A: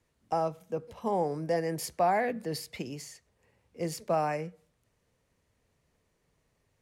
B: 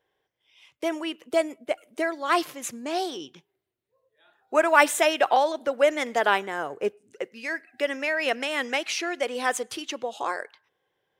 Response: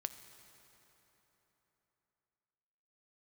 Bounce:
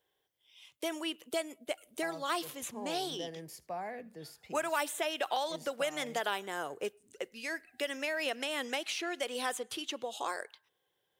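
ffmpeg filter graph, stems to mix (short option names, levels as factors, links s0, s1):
-filter_complex "[0:a]aemphasis=mode=production:type=50kf,highshelf=f=6400:g=-11.5,adelay=1700,volume=0.211,asplit=2[s0][s1];[s1]volume=0.0708[s2];[1:a]aexciter=amount=1.9:drive=6.7:freq=3000,volume=0.501[s3];[s2]aecho=0:1:79:1[s4];[s0][s3][s4]amix=inputs=3:normalize=0,acrossover=split=1100|3400[s5][s6][s7];[s5]acompressor=threshold=0.02:ratio=4[s8];[s6]acompressor=threshold=0.0141:ratio=4[s9];[s7]acompressor=threshold=0.00708:ratio=4[s10];[s8][s9][s10]amix=inputs=3:normalize=0"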